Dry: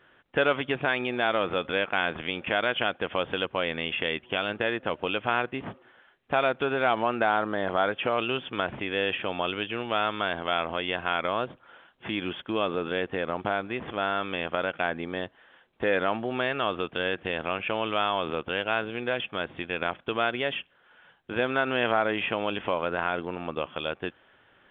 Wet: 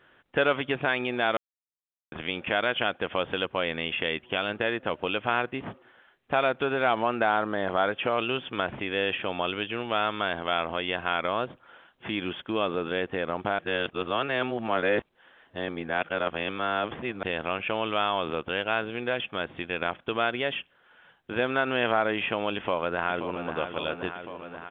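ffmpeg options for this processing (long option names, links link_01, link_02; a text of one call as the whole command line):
ffmpeg -i in.wav -filter_complex "[0:a]asplit=2[link_01][link_02];[link_02]afade=type=in:start_time=22.56:duration=0.01,afade=type=out:start_time=23.57:duration=0.01,aecho=0:1:530|1060|1590|2120|2650|3180|3710|4240|4770|5300|5830|6360:0.375837|0.281878|0.211409|0.158556|0.118917|0.089188|0.066891|0.0501682|0.0376262|0.0282196|0.0211647|0.0158735[link_03];[link_01][link_03]amix=inputs=2:normalize=0,asplit=5[link_04][link_05][link_06][link_07][link_08];[link_04]atrim=end=1.37,asetpts=PTS-STARTPTS,afade=type=out:start_time=1.366:duration=0.004:curve=hsin[link_09];[link_05]atrim=start=1.37:end=2.12,asetpts=PTS-STARTPTS,volume=0[link_10];[link_06]atrim=start=2.12:end=13.592,asetpts=PTS-STARTPTS,afade=type=in:duration=0.004:curve=hsin[link_11];[link_07]atrim=start=13.588:end=17.232,asetpts=PTS-STARTPTS,areverse[link_12];[link_08]atrim=start=17.228[link_13];[link_09][link_10][link_11]concat=n=3:v=0:a=1[link_14];[link_14][link_12]acrossfade=duration=0.004:curve1=hsin:curve2=hsin[link_15];[link_15][link_13]acrossfade=duration=0.004:curve1=hsin:curve2=hsin" out.wav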